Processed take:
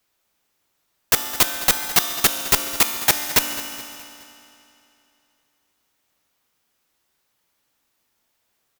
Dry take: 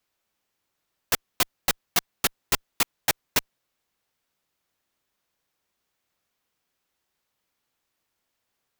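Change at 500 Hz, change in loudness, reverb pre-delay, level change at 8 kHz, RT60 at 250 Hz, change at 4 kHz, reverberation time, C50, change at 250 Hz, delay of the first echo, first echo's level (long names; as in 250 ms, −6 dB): +6.0 dB, +7.5 dB, 3 ms, +8.0 dB, 2.8 s, +7.0 dB, 2.8 s, 6.0 dB, +6.5 dB, 211 ms, −15.5 dB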